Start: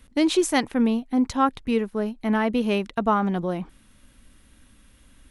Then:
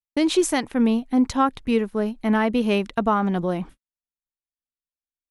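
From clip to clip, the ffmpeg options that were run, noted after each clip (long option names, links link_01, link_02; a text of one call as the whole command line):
ffmpeg -i in.wav -af "agate=range=-58dB:threshold=-41dB:ratio=16:detection=peak,alimiter=limit=-12.5dB:level=0:latency=1:release=324,volume=2.5dB" out.wav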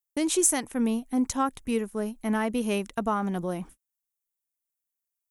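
ffmpeg -i in.wav -af "aexciter=amount=4.2:drive=7.1:freq=6000,volume=-6.5dB" out.wav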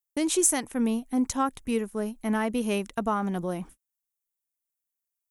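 ffmpeg -i in.wav -af anull out.wav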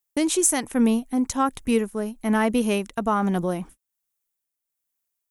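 ffmpeg -i in.wav -af "tremolo=f=1.2:d=0.41,volume=6.5dB" out.wav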